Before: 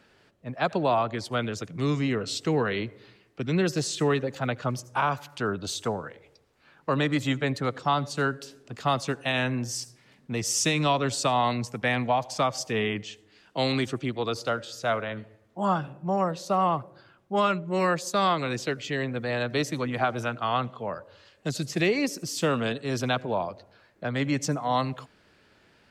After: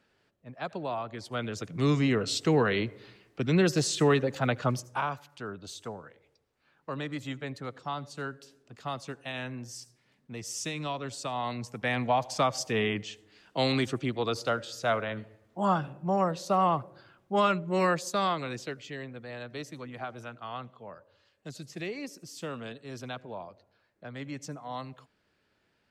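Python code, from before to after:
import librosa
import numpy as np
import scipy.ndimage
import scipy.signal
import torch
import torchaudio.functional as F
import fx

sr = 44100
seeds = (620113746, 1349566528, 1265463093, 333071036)

y = fx.gain(x, sr, db=fx.line((1.04, -10.0), (1.86, 1.0), (4.71, 1.0), (5.27, -10.5), (11.25, -10.5), (12.18, -1.0), (17.84, -1.0), (19.21, -12.5)))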